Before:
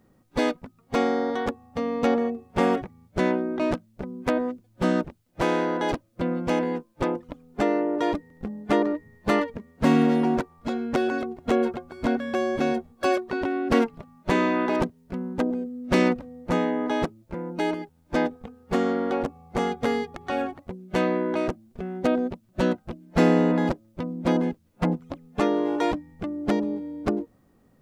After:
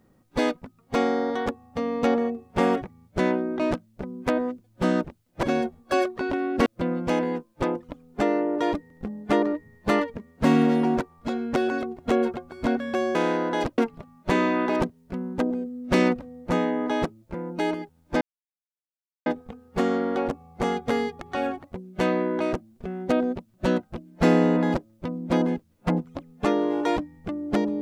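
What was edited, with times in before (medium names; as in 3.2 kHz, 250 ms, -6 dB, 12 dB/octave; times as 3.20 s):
5.43–6.06 s: swap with 12.55–13.78 s
18.21 s: insert silence 1.05 s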